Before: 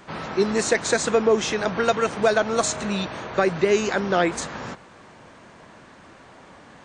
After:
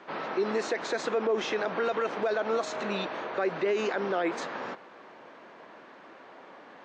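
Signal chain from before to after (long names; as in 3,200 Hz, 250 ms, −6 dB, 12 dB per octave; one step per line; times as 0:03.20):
Chebyshev high-pass filter 370 Hz, order 2
brickwall limiter −19 dBFS, peak gain reduction 11.5 dB
high-frequency loss of the air 190 metres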